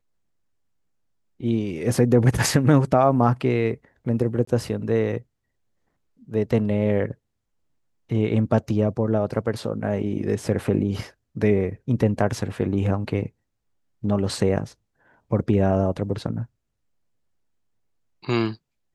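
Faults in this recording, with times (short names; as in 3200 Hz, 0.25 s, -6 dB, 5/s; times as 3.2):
4.45–4.47 gap 24 ms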